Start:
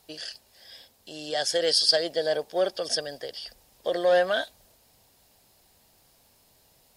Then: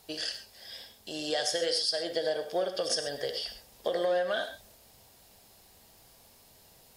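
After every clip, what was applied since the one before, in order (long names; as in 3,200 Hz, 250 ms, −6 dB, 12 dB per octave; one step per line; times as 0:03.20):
downward compressor 16 to 1, threshold −29 dBFS, peak gain reduction 14.5 dB
reverb whose tail is shaped and stops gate 150 ms flat, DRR 6.5 dB
level +2.5 dB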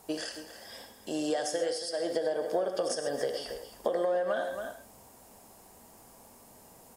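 slap from a distant wall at 47 metres, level −12 dB
downward compressor 6 to 1, threshold −32 dBFS, peak gain reduction 7.5 dB
octave-band graphic EQ 250/500/1,000/4,000/8,000 Hz +9/+3/+8/−9/+6 dB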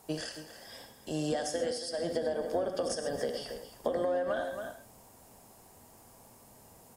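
sub-octave generator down 1 octave, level −3 dB
level −2 dB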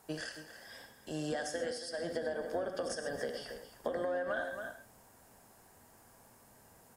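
parametric band 1,600 Hz +8.5 dB 0.63 octaves
level −5 dB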